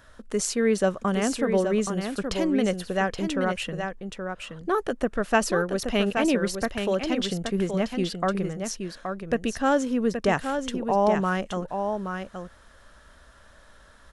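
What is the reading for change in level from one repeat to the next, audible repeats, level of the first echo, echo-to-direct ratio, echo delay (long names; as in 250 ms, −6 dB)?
repeats not evenly spaced, 1, −6.5 dB, −6.5 dB, 824 ms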